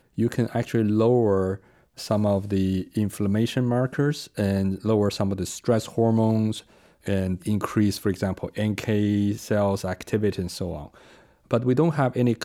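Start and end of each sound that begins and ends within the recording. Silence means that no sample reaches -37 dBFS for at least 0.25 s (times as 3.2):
1.98–6.6
7.06–10.88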